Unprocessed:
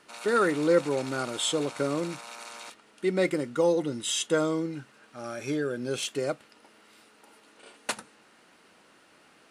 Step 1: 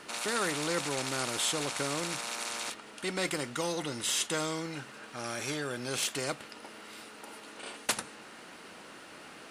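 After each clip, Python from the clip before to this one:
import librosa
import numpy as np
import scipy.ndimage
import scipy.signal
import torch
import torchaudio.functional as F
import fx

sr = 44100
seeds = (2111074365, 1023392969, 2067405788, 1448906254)

y = fx.spectral_comp(x, sr, ratio=2.0)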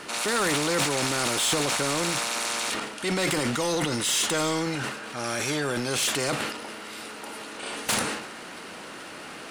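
y = fx.transient(x, sr, attack_db=-2, sustain_db=11)
y = 10.0 ** (-27.0 / 20.0) * np.tanh(y / 10.0 ** (-27.0 / 20.0))
y = F.gain(torch.from_numpy(y), 8.5).numpy()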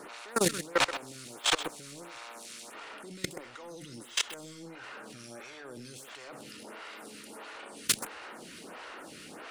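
y = fx.level_steps(x, sr, step_db=24)
y = y + 10.0 ** (-10.5 / 20.0) * np.pad(y, (int(128 * sr / 1000.0), 0))[:len(y)]
y = fx.stagger_phaser(y, sr, hz=1.5)
y = F.gain(torch.from_numpy(y), 4.5).numpy()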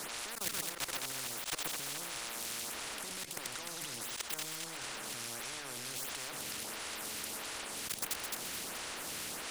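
y = fx.echo_thinned(x, sr, ms=214, feedback_pct=40, hz=420.0, wet_db=-17)
y = fx.auto_swell(y, sr, attack_ms=218.0)
y = fx.spectral_comp(y, sr, ratio=4.0)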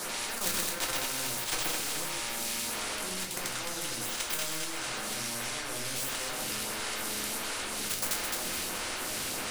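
y = fx.room_shoebox(x, sr, seeds[0], volume_m3=79.0, walls='mixed', distance_m=0.89)
y = F.gain(torch.from_numpy(y), 3.5).numpy()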